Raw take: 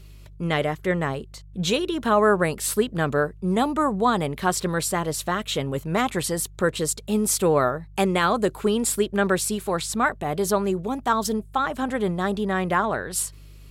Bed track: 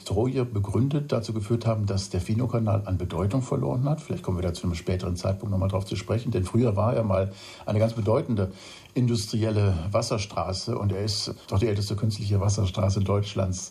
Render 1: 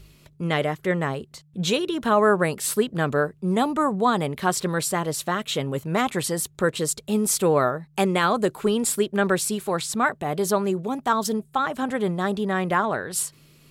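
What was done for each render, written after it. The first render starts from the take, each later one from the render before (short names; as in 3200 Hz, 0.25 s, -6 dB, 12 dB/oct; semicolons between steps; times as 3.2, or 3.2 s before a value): de-hum 50 Hz, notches 2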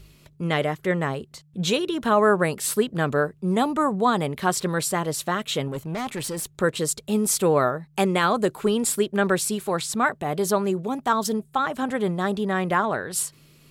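5.68–6.49 tube stage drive 25 dB, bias 0.25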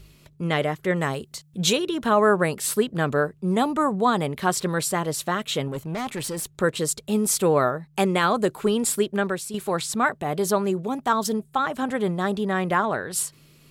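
0.96–1.73 high shelf 3800 Hz +9.5 dB; 9.13–9.54 fade out quadratic, to -9 dB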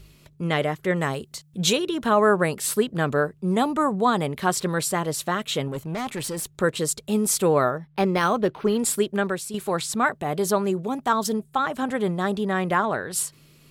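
7.77–8.79 decimation joined by straight lines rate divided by 6×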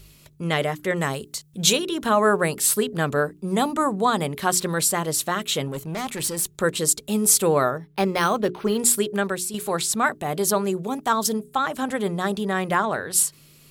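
high shelf 4800 Hz +8.5 dB; notches 60/120/180/240/300/360/420 Hz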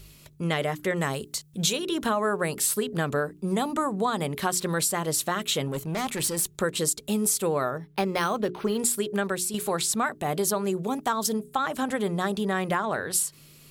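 compressor, threshold -22 dBFS, peak gain reduction 9 dB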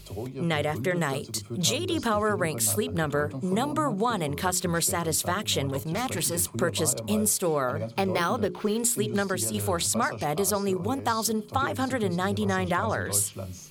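add bed track -11 dB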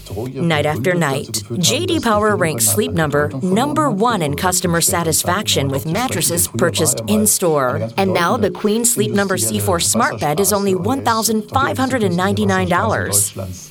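gain +10.5 dB; limiter -1 dBFS, peak gain reduction 2 dB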